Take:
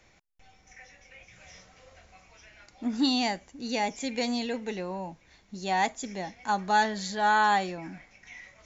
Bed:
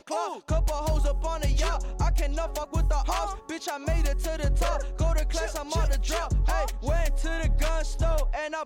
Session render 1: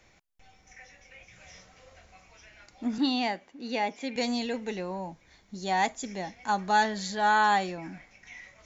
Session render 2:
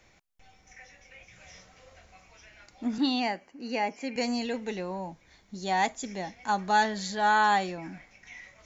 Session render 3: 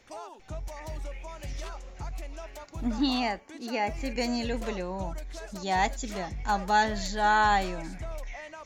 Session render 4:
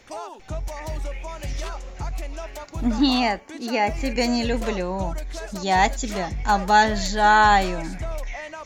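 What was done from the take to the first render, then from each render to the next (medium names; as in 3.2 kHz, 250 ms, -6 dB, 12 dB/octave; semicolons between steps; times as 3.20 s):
2.98–4.16 s: three-band isolator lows -22 dB, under 180 Hz, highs -18 dB, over 4.5 kHz; 4.90–5.79 s: band-stop 2.7 kHz
3.20–4.45 s: Butterworth band-stop 3.6 kHz, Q 3.9
add bed -12.5 dB
trim +7.5 dB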